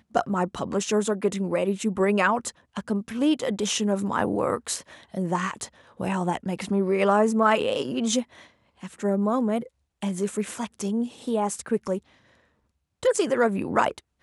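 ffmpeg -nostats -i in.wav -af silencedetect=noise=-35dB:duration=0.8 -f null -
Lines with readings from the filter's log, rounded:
silence_start: 11.98
silence_end: 13.03 | silence_duration: 1.04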